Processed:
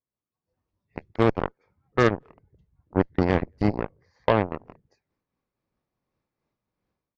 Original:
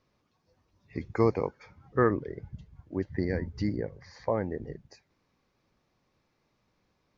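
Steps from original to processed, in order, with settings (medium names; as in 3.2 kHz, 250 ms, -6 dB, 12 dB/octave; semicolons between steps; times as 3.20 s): treble shelf 2.6 kHz -9 dB; level rider gain up to 16 dB; speakerphone echo 220 ms, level -25 dB; Chebyshev shaper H 3 -20 dB, 7 -19 dB, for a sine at -1 dBFS; random flutter of the level, depth 55%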